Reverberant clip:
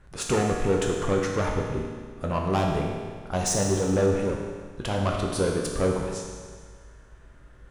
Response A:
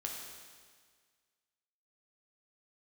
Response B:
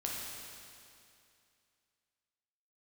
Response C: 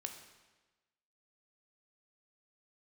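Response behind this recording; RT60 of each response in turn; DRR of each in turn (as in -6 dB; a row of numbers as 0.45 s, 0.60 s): A; 1.7 s, 2.5 s, 1.2 s; -1.0 dB, -3.5 dB, 4.5 dB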